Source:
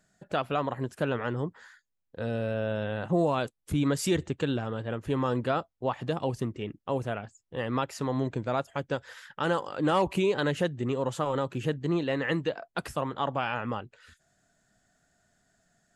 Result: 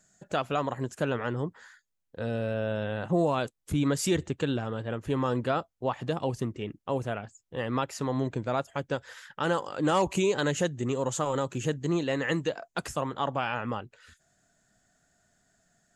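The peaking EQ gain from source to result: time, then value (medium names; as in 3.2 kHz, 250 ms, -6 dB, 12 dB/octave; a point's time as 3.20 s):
peaking EQ 6.8 kHz 0.51 oct
0.85 s +12 dB
1.32 s +3.5 dB
9.40 s +3.5 dB
10.09 s +14.5 dB
12.56 s +14.5 dB
13.50 s +3.5 dB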